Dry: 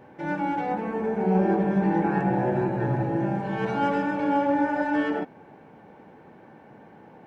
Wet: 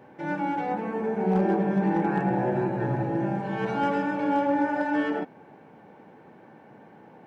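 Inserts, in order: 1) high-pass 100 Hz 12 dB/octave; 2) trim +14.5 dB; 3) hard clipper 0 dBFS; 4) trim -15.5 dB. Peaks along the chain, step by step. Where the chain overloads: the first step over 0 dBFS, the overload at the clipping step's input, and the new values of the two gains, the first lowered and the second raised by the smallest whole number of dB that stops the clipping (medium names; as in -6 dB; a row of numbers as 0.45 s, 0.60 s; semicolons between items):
-11.0 dBFS, +3.5 dBFS, 0.0 dBFS, -15.5 dBFS; step 2, 3.5 dB; step 2 +10.5 dB, step 4 -11.5 dB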